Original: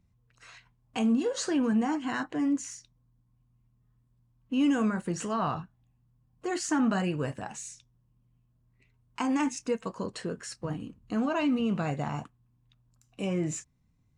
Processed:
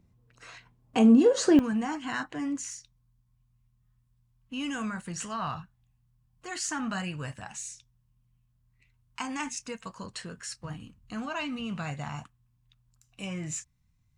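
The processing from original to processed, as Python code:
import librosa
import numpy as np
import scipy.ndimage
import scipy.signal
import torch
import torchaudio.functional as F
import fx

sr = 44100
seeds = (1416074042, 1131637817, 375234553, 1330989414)

y = fx.peak_eq(x, sr, hz=380.0, db=fx.steps((0.0, 7.0), (1.59, -8.5), (2.7, -15.0)), octaves=2.1)
y = y * librosa.db_to_amplitude(2.5)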